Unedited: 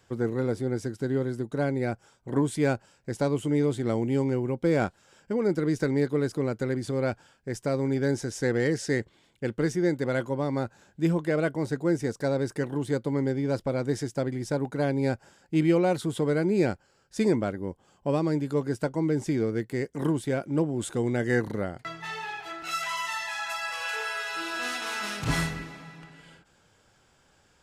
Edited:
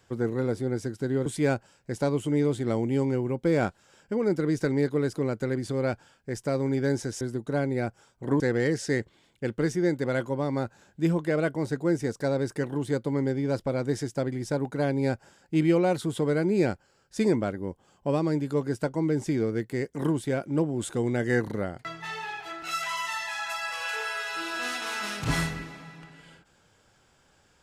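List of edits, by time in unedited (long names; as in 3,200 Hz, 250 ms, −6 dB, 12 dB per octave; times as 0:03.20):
0:01.26–0:02.45: move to 0:08.40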